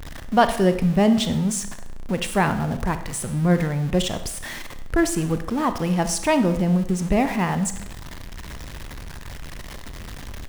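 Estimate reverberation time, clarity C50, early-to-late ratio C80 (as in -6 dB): 0.80 s, 11.5 dB, 14.0 dB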